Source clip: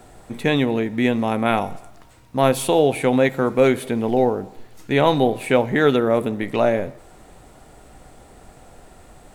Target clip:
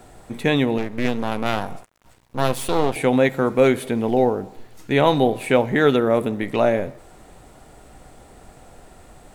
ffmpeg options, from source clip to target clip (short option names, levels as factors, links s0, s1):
-filter_complex "[0:a]asettb=1/sr,asplit=3[s0][s1][s2];[s0]atrim=end=0.784[s3];[s1]atrim=start=0.78:end=2.96,asetpts=PTS-STARTPTS,afade=t=in:d=0.004:c=qsin,afade=t=out:st=2.176:d=0.004:c=qsin,aeval=exprs='max(val(0),0)':c=same[s4];[s2]atrim=start=2.956[s5];[s3][s4]acrossfade=d=0.004:c1=hsin:c2=qsin[s6];[s6][s5]acrossfade=d=0.004:c1=qsin:c2=hsin"